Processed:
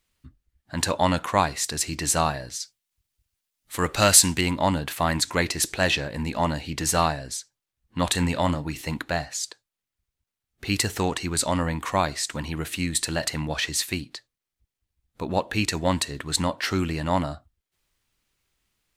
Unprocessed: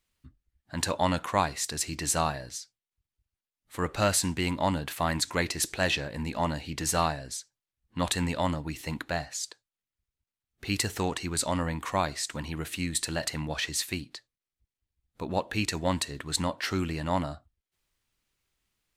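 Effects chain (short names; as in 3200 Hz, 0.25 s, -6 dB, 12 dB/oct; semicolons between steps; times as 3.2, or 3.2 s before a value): 2.6–4.41 high shelf 2400 Hz +8.5 dB; 8.07–8.82 doubler 34 ms -14 dB; gain +4.5 dB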